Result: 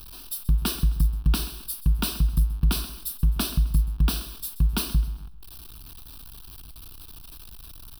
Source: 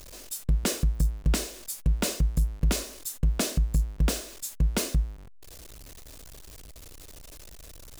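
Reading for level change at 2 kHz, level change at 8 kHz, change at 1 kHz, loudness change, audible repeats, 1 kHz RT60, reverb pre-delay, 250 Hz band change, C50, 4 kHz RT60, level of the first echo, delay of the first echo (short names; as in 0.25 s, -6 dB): -1.0 dB, -2.5 dB, +1.5 dB, +2.5 dB, 3, none, none, +1.0 dB, none, none, -15.5 dB, 0.131 s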